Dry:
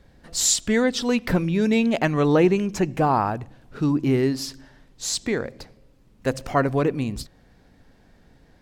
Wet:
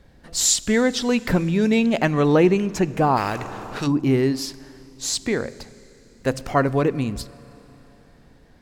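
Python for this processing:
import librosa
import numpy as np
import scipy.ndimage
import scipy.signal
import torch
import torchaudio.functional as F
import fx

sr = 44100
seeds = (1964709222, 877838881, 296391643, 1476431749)

y = fx.rev_schroeder(x, sr, rt60_s=3.7, comb_ms=30, drr_db=19.5)
y = fx.spectral_comp(y, sr, ratio=2.0, at=(3.16, 3.86), fade=0.02)
y = F.gain(torch.from_numpy(y), 1.5).numpy()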